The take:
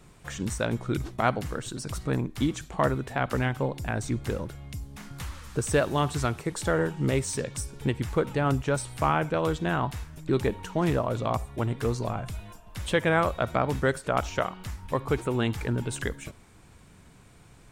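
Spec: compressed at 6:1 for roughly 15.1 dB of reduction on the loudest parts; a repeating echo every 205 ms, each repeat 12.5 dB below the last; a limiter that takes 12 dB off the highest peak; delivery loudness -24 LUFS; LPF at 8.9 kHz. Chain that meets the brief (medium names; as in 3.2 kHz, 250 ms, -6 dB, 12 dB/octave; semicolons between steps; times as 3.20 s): low-pass 8.9 kHz; compression 6:1, threshold -36 dBFS; peak limiter -34 dBFS; feedback delay 205 ms, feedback 24%, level -12.5 dB; trim +20.5 dB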